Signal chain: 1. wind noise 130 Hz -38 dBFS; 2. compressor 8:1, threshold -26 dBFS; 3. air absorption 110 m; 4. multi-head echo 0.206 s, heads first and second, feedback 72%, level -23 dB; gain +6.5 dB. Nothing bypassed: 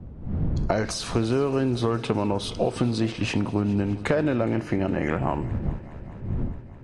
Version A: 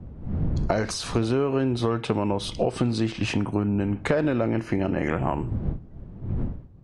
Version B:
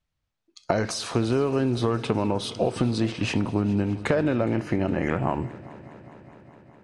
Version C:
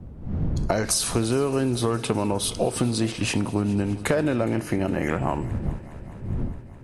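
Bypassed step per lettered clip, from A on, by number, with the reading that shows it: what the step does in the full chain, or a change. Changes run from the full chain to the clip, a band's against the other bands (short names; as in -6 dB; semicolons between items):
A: 4, echo-to-direct -16.0 dB to none; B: 1, momentary loudness spread change -2 LU; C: 3, 8 kHz band +10.5 dB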